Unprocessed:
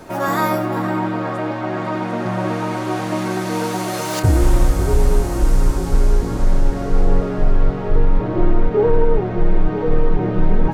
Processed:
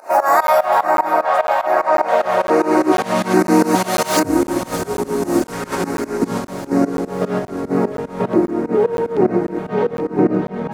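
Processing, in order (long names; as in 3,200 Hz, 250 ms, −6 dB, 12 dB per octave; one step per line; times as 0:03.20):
0:05.52–0:06.18: parametric band 1,900 Hz +9 dB 1.6 octaves
in parallel at −1 dB: compressor whose output falls as the input rises −21 dBFS, ratio −1
on the sum: auto-filter notch square 1.2 Hz 310–3,300 Hz
on a send: feedback echo with a high-pass in the loop 616 ms, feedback 69%, high-pass 420 Hz, level −13.5 dB
on the sum: fake sidechain pumping 149 BPM, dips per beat 2, −21 dB, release 150 ms
high-pass filter sweep 690 Hz → 250 Hz, 0:01.92–0:03.19
regular buffer underruns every 0.50 s, samples 512, zero, from 0:00.47
level −1 dB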